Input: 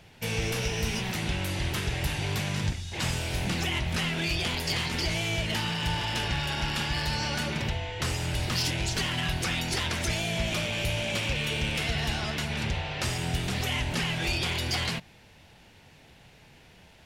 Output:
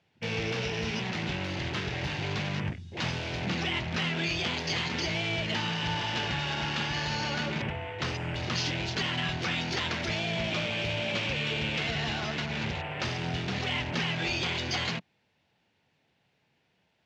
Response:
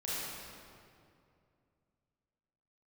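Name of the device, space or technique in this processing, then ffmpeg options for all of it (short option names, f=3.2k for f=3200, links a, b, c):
over-cleaned archive recording: -af "highpass=120,lowpass=5.5k,afwtdn=0.0112"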